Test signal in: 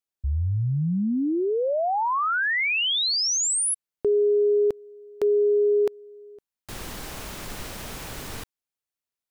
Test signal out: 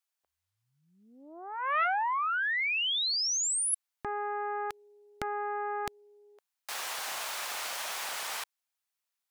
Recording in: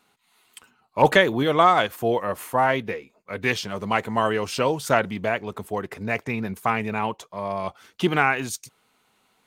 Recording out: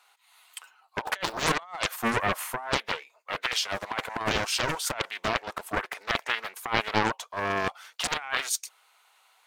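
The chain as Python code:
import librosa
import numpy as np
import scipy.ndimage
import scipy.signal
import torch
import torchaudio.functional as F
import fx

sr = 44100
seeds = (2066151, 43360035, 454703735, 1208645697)

y = scipy.signal.sosfilt(scipy.signal.butter(4, 680.0, 'highpass', fs=sr, output='sos'), x)
y = fx.over_compress(y, sr, threshold_db=-27.0, ratio=-0.5)
y = fx.doppler_dist(y, sr, depth_ms=0.99)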